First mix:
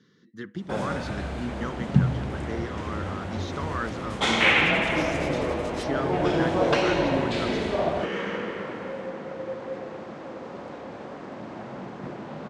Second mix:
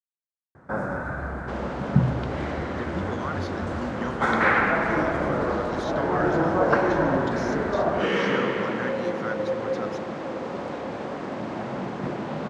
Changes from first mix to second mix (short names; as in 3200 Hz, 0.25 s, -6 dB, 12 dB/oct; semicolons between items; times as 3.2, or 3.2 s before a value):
speech: entry +2.40 s; first sound: add resonant high shelf 2100 Hz -12 dB, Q 3; second sound +6.5 dB